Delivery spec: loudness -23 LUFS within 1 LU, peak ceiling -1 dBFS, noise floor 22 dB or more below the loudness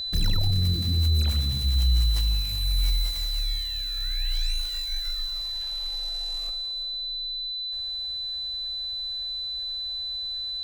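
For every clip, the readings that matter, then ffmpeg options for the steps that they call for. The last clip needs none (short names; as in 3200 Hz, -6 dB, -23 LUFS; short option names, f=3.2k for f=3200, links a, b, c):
steady tone 4000 Hz; tone level -29 dBFS; loudness -27.0 LUFS; peak -14.5 dBFS; loudness target -23.0 LUFS
-> -af "bandreject=f=4k:w=30"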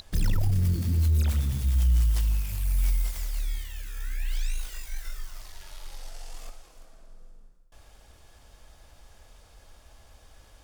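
steady tone none; loudness -28.0 LUFS; peak -16.0 dBFS; loudness target -23.0 LUFS
-> -af "volume=5dB"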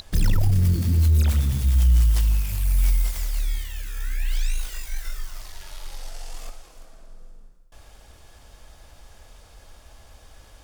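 loudness -23.0 LUFS; peak -11.0 dBFS; noise floor -50 dBFS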